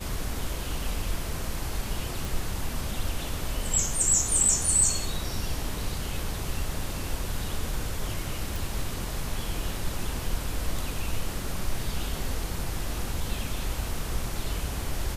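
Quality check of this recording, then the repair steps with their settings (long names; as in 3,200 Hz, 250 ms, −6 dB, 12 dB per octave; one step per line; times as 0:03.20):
0:02.25: click
0:08.56: click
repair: click removal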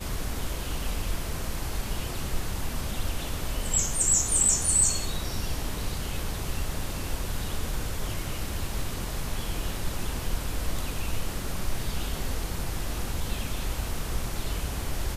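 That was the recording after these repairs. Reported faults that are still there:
none of them is left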